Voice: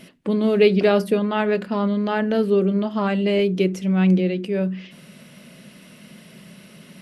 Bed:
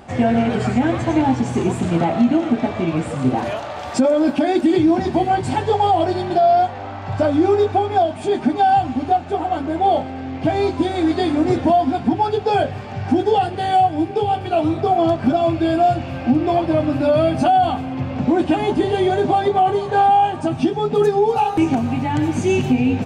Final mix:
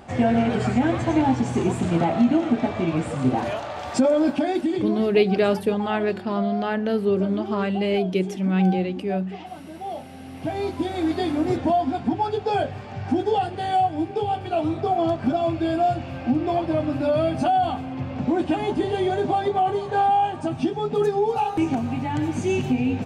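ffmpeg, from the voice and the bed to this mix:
-filter_complex "[0:a]adelay=4550,volume=0.708[s0];[1:a]volume=2.66,afade=t=out:st=4.18:d=0.9:silence=0.199526,afade=t=in:st=9.85:d=1.21:silence=0.266073[s1];[s0][s1]amix=inputs=2:normalize=0"

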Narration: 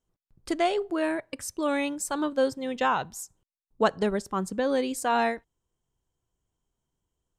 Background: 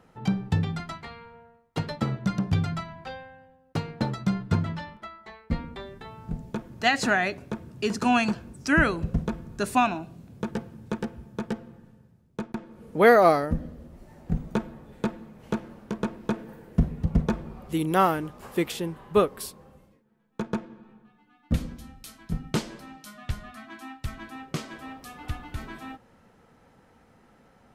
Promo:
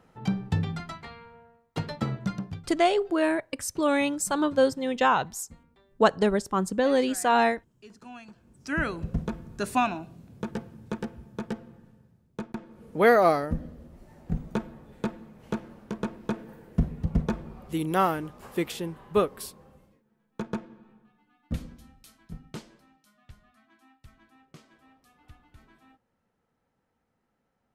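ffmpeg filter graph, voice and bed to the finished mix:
-filter_complex "[0:a]adelay=2200,volume=1.41[s0];[1:a]volume=8.41,afade=t=out:st=2.2:d=0.42:silence=0.0891251,afade=t=in:st=8.33:d=0.87:silence=0.0944061,afade=t=out:st=20.37:d=2.64:silence=0.149624[s1];[s0][s1]amix=inputs=2:normalize=0"

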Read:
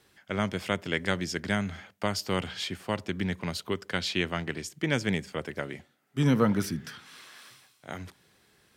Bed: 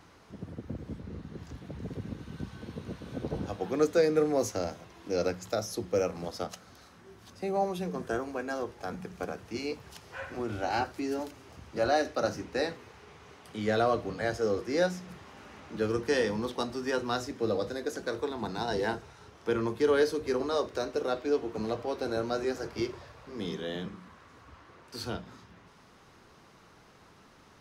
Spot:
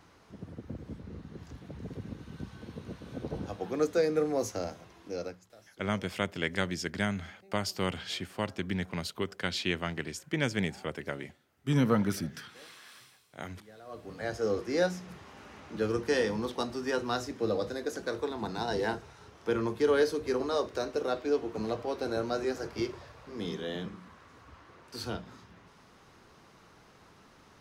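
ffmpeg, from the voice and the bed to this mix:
-filter_complex "[0:a]adelay=5500,volume=0.75[s0];[1:a]volume=13.3,afade=t=out:st=4.9:d=0.61:silence=0.0707946,afade=t=in:st=13.85:d=0.66:silence=0.0562341[s1];[s0][s1]amix=inputs=2:normalize=0"

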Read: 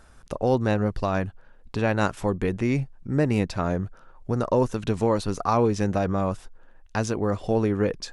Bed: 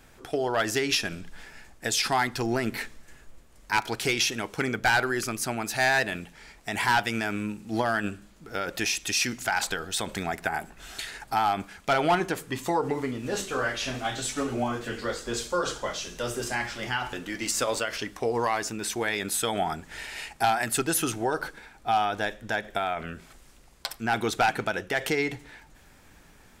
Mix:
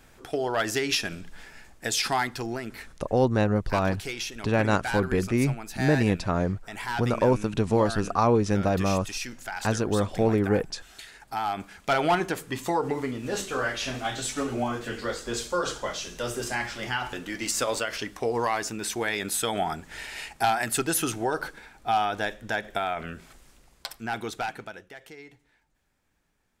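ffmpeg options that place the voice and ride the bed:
-filter_complex "[0:a]adelay=2700,volume=1[s0];[1:a]volume=2.51,afade=t=out:st=2.12:d=0.57:silence=0.398107,afade=t=in:st=11.17:d=0.76:silence=0.375837,afade=t=out:st=23.26:d=1.74:silence=0.105925[s1];[s0][s1]amix=inputs=2:normalize=0"

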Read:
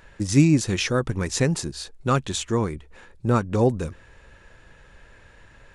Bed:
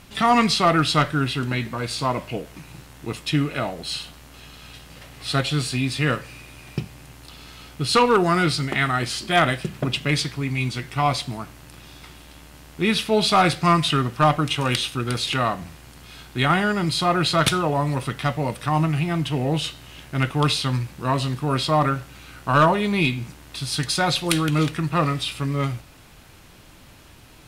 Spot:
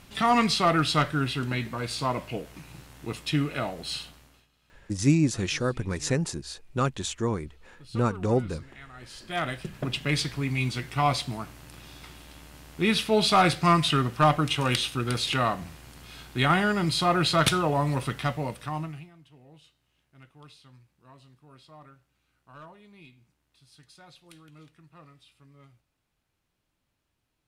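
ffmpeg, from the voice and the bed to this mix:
-filter_complex "[0:a]adelay=4700,volume=0.596[s0];[1:a]volume=8.41,afade=t=out:st=3.97:d=0.5:silence=0.0841395,afade=t=in:st=8.94:d=1.43:silence=0.0707946,afade=t=out:st=18.08:d=1.03:silence=0.0398107[s1];[s0][s1]amix=inputs=2:normalize=0"

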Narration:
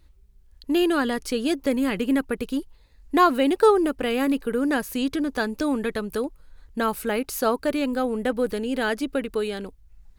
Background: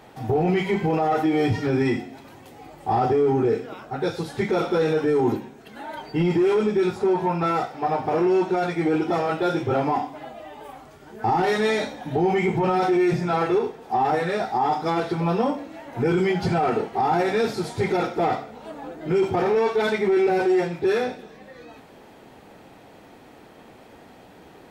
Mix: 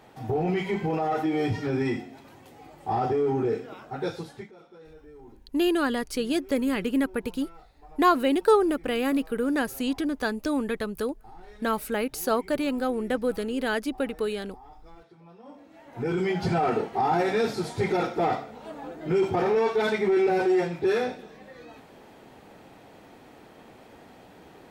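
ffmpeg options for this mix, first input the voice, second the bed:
-filter_complex "[0:a]adelay=4850,volume=0.75[s0];[1:a]volume=11.2,afade=t=out:st=4.09:d=0.42:silence=0.0668344,afade=t=in:st=15.43:d=1.1:silence=0.0501187[s1];[s0][s1]amix=inputs=2:normalize=0"

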